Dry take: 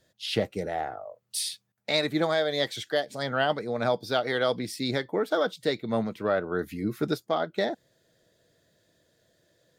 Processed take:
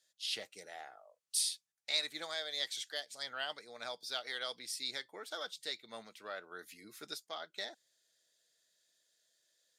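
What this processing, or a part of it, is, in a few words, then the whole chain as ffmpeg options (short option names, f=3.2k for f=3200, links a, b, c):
piezo pickup straight into a mixer: -af "lowpass=8.6k,aderivative,volume=1dB"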